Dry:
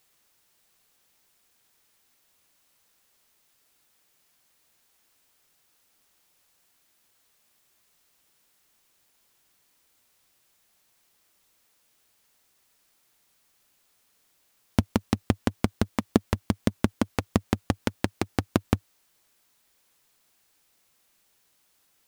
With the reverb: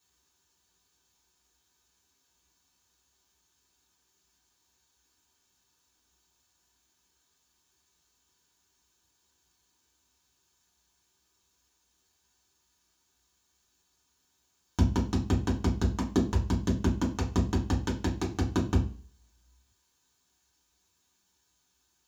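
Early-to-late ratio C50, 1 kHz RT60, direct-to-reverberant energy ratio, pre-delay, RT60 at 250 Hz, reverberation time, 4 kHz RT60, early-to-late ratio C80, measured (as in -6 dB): 10.5 dB, 0.40 s, -6.5 dB, 3 ms, 0.45 s, 0.40 s, 0.40 s, 15.5 dB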